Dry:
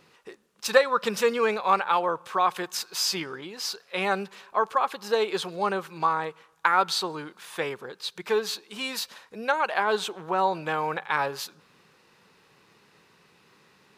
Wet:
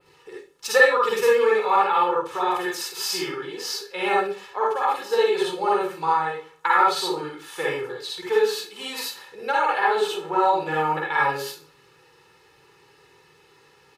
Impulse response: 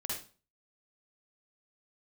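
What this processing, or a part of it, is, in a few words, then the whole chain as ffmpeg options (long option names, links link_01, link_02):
microphone above a desk: -filter_complex "[0:a]aecho=1:1:2.3:0.76[link_01];[1:a]atrim=start_sample=2205[link_02];[link_01][link_02]afir=irnorm=-1:irlink=0,adynamicequalizer=threshold=0.00891:dfrequency=5900:dqfactor=1.1:tfrequency=5900:tqfactor=1.1:attack=5:release=100:ratio=0.375:range=3:mode=cutabove:tftype=bell"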